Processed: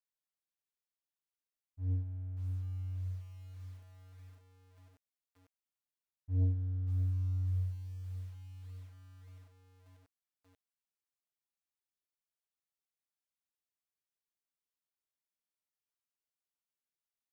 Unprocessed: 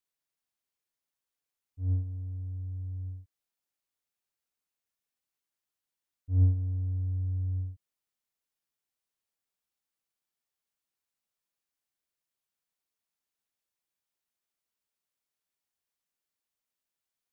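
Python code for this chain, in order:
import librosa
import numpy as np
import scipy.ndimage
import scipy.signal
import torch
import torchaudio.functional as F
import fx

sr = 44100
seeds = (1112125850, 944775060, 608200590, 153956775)

y = fx.leveller(x, sr, passes=1)
y = fx.echo_crushed(y, sr, ms=585, feedback_pct=55, bits=8, wet_db=-11.0)
y = F.gain(torch.from_numpy(y), -8.0).numpy()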